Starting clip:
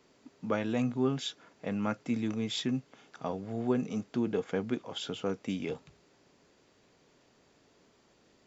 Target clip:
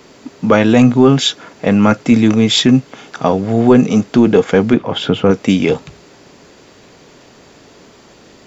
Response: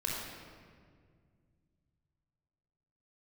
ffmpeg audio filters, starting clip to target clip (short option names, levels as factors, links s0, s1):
-filter_complex "[0:a]asettb=1/sr,asplit=3[s0][s1][s2];[s0]atrim=end=4.734[s3];[s1]atrim=start=4.73:end=5.31,asetpts=PTS-STARTPTS,afade=t=in:d=0.004:c=qsin,afade=t=out:st=0.576:d=0.004:c=qsin,bass=f=250:g=5,treble=f=4000:g=-15[s4];[s2]atrim=start=5.306[s5];[s3][s4]acrossfade=d=0.004:c1=hsin:c2=qsin[s6];[s6][s5]acrossfade=d=0.004:c1=qsin:c2=hsin,apsyclip=15,volume=0.841"